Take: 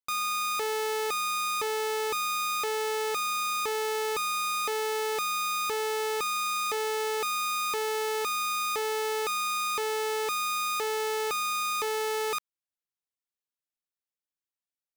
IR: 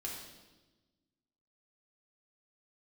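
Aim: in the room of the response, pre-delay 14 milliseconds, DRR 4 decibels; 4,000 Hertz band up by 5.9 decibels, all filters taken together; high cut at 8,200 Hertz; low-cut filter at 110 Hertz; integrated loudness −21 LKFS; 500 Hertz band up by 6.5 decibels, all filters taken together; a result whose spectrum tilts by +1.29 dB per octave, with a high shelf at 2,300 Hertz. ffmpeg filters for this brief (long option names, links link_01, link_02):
-filter_complex "[0:a]highpass=110,lowpass=8200,equalizer=frequency=500:width_type=o:gain=7.5,highshelf=frequency=2300:gain=3.5,equalizer=frequency=4000:width_type=o:gain=4,asplit=2[link_01][link_02];[1:a]atrim=start_sample=2205,adelay=14[link_03];[link_02][link_03]afir=irnorm=-1:irlink=0,volume=-4dB[link_04];[link_01][link_04]amix=inputs=2:normalize=0,volume=3dB"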